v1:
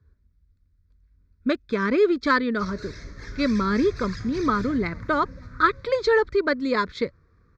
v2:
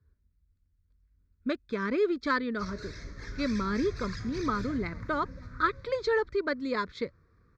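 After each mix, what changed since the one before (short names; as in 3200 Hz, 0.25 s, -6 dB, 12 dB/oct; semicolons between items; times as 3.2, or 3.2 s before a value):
speech -7.5 dB; background -3.0 dB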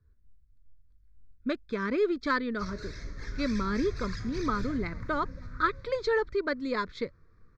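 master: remove HPF 44 Hz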